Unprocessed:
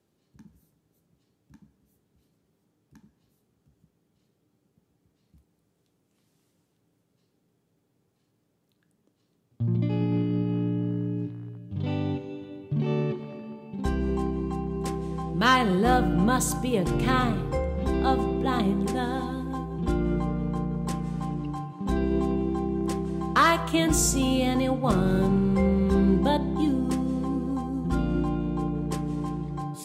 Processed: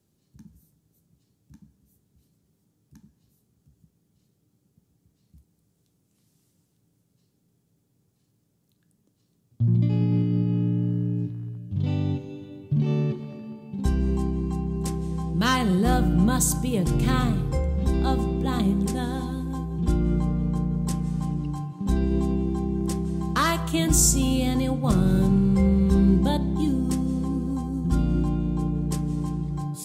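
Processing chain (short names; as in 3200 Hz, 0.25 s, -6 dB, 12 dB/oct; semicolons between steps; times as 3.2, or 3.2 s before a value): tone controls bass +10 dB, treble +10 dB; gain -4 dB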